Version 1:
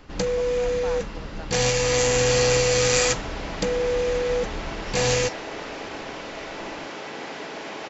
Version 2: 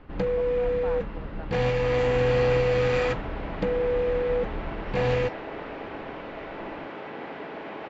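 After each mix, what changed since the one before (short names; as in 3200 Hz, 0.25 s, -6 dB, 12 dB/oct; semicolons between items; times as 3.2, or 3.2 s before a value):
master: add air absorption 490 m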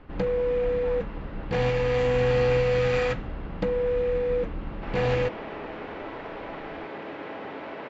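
speech -7.0 dB; second sound: entry +3.00 s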